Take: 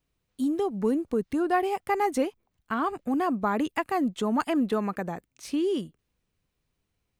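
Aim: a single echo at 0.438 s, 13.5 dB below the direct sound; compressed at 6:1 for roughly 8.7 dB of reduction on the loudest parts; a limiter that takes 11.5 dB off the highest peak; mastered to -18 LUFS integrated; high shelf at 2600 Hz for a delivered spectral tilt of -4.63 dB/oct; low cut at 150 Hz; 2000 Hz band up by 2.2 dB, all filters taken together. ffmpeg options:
-af "highpass=150,equalizer=f=2k:t=o:g=4.5,highshelf=f=2.6k:g=-4.5,acompressor=threshold=-30dB:ratio=6,alimiter=level_in=4dB:limit=-24dB:level=0:latency=1,volume=-4dB,aecho=1:1:438:0.211,volume=18.5dB"

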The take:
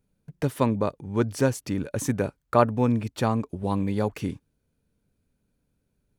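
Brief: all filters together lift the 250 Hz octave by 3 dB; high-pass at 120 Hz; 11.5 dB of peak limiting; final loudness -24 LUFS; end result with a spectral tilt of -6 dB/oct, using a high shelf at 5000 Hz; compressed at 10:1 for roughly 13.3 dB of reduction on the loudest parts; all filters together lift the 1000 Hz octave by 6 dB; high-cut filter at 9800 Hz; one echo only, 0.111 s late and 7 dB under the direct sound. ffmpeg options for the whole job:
-af "highpass=120,lowpass=9.8k,equalizer=f=250:t=o:g=3.5,equalizer=f=1k:t=o:g=7.5,highshelf=f=5k:g=-6,acompressor=threshold=-22dB:ratio=10,alimiter=limit=-20.5dB:level=0:latency=1,aecho=1:1:111:0.447,volume=8dB"

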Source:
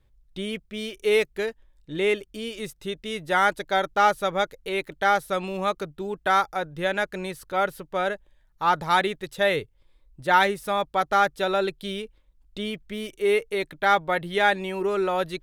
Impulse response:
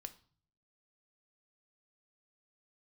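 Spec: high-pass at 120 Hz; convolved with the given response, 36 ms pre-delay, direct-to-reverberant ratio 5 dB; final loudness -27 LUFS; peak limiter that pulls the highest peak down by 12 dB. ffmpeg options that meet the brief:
-filter_complex "[0:a]highpass=120,alimiter=limit=-18.5dB:level=0:latency=1,asplit=2[a][b];[1:a]atrim=start_sample=2205,adelay=36[c];[b][c]afir=irnorm=-1:irlink=0,volume=0dB[d];[a][d]amix=inputs=2:normalize=0,volume=2dB"

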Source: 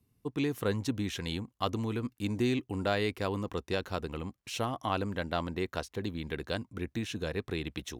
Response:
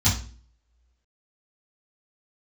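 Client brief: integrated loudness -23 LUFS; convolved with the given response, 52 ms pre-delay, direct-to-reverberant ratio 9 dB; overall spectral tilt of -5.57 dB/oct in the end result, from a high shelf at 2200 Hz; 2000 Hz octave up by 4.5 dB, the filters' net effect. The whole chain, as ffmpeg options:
-filter_complex "[0:a]equalizer=f=2k:t=o:g=3,highshelf=f=2.2k:g=5,asplit=2[a][b];[1:a]atrim=start_sample=2205,adelay=52[c];[b][c]afir=irnorm=-1:irlink=0,volume=-22.5dB[d];[a][d]amix=inputs=2:normalize=0,volume=5dB"

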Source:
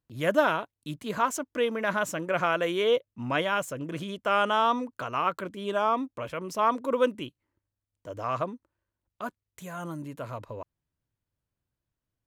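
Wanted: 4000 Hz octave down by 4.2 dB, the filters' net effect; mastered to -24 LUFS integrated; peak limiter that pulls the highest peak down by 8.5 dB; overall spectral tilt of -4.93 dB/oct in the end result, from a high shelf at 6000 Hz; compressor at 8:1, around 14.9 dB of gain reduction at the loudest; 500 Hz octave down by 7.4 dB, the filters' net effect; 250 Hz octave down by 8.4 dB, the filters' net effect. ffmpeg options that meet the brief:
-af "equalizer=f=250:t=o:g=-9,equalizer=f=500:t=o:g=-7,equalizer=f=4k:t=o:g=-3.5,highshelf=f=6k:g=-8,acompressor=threshold=-37dB:ratio=8,volume=21dB,alimiter=limit=-12.5dB:level=0:latency=1"

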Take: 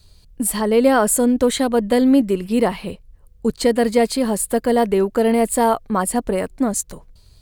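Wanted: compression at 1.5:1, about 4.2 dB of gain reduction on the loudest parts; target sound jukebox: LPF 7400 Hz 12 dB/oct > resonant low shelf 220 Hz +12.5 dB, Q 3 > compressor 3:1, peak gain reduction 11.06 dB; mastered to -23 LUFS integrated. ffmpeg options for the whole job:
-af "acompressor=threshold=-22dB:ratio=1.5,lowpass=7.4k,lowshelf=f=220:t=q:w=3:g=12.5,acompressor=threshold=-26dB:ratio=3,volume=5dB"

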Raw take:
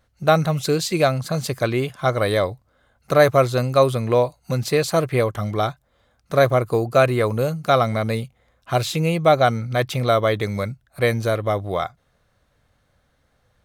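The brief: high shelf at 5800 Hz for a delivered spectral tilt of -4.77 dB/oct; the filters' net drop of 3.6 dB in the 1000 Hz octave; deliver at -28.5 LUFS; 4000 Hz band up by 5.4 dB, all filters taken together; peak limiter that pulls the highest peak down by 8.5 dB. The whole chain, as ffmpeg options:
-af "equalizer=f=1k:t=o:g=-6,equalizer=f=4k:t=o:g=7.5,highshelf=f=5.8k:g=-4,volume=-5dB,alimiter=limit=-17dB:level=0:latency=1"

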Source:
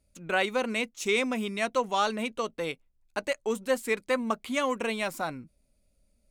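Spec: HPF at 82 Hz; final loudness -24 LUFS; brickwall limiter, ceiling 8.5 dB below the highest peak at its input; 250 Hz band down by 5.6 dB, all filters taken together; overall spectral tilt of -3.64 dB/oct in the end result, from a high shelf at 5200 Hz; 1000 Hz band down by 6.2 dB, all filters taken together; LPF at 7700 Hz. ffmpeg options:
-af "highpass=82,lowpass=7.7k,equalizer=f=250:t=o:g=-6,equalizer=f=1k:t=o:g=-7.5,highshelf=f=5.2k:g=-5,volume=12.5dB,alimiter=limit=-13dB:level=0:latency=1"

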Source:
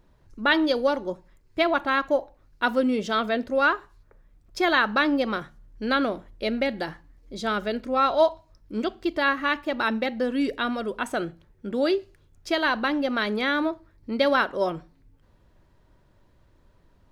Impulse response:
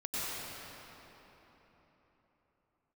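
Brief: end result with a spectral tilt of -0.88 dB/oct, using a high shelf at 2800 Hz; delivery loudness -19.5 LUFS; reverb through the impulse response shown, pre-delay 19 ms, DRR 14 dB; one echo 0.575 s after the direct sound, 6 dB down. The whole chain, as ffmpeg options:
-filter_complex "[0:a]highshelf=f=2.8k:g=7.5,aecho=1:1:575:0.501,asplit=2[a][b];[1:a]atrim=start_sample=2205,adelay=19[c];[b][c]afir=irnorm=-1:irlink=0,volume=-20dB[d];[a][d]amix=inputs=2:normalize=0,volume=4dB"

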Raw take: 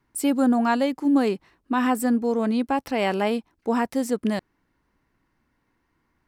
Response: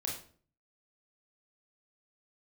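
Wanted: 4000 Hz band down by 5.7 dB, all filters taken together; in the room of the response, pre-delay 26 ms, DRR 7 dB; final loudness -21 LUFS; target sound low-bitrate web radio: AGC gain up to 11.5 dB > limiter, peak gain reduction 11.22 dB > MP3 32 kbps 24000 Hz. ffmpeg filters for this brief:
-filter_complex "[0:a]equalizer=f=4k:t=o:g=-8.5,asplit=2[a][b];[1:a]atrim=start_sample=2205,adelay=26[c];[b][c]afir=irnorm=-1:irlink=0,volume=-8.5dB[d];[a][d]amix=inputs=2:normalize=0,dynaudnorm=m=11.5dB,alimiter=limit=-18.5dB:level=0:latency=1,volume=6.5dB" -ar 24000 -c:a libmp3lame -b:a 32k

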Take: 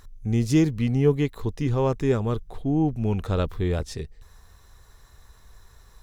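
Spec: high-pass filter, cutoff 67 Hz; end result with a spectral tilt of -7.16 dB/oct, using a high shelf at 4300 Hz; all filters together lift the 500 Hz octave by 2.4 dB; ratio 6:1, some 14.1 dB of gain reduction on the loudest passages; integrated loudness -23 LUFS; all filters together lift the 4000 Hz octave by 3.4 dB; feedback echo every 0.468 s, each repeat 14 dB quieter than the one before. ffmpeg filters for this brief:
-af "highpass=67,equalizer=f=500:t=o:g=3,equalizer=f=4k:t=o:g=7.5,highshelf=f=4.3k:g=-5.5,acompressor=threshold=-29dB:ratio=6,aecho=1:1:468|936:0.2|0.0399,volume=10.5dB"

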